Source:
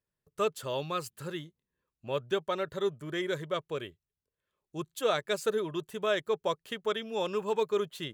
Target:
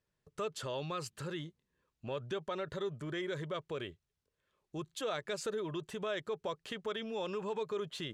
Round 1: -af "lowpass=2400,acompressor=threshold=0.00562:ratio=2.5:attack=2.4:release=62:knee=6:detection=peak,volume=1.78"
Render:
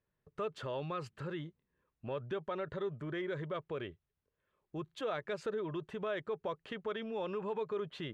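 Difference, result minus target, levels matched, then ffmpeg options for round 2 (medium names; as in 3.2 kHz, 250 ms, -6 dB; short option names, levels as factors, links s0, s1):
8 kHz band -14.0 dB
-af "lowpass=7100,acompressor=threshold=0.00562:ratio=2.5:attack=2.4:release=62:knee=6:detection=peak,volume=1.78"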